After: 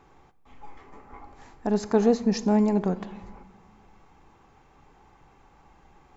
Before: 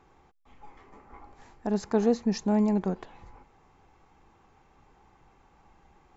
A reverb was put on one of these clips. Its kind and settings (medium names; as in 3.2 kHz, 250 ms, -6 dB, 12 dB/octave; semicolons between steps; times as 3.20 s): simulated room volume 890 m³, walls mixed, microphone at 0.3 m; trim +3.5 dB